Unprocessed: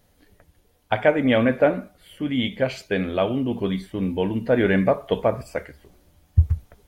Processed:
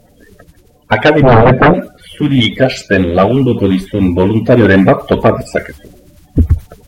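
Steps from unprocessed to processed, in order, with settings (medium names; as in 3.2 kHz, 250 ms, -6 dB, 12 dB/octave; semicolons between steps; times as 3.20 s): coarse spectral quantiser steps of 30 dB; 1.22–1.74 s: tilt EQ -4 dB/octave; sine folder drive 11 dB, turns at -1.5 dBFS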